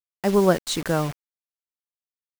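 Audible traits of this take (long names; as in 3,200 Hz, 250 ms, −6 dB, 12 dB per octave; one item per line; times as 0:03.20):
tremolo saw up 1.8 Hz, depth 30%
a quantiser's noise floor 6 bits, dither none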